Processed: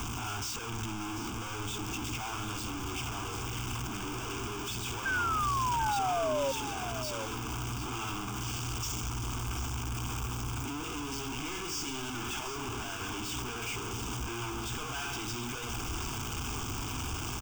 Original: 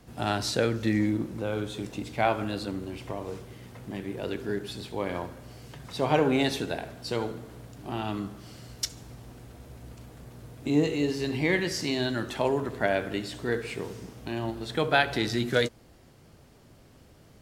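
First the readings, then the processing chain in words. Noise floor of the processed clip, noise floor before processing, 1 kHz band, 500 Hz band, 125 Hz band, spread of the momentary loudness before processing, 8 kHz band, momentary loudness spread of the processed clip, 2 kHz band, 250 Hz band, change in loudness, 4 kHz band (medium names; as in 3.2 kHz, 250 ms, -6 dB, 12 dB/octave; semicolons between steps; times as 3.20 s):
-38 dBFS, -55 dBFS, -0.5 dB, -10.5 dB, -2.0 dB, 21 LU, +6.0 dB, 7 LU, -4.5 dB, -9.5 dB, -5.5 dB, -2.0 dB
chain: one-bit comparator; peaking EQ 170 Hz -11.5 dB 0.64 oct; static phaser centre 2.8 kHz, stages 8; painted sound fall, 5.05–6.52 s, 530–1600 Hz -29 dBFS; on a send: delay 741 ms -10.5 dB; on the sum: trim -2 dB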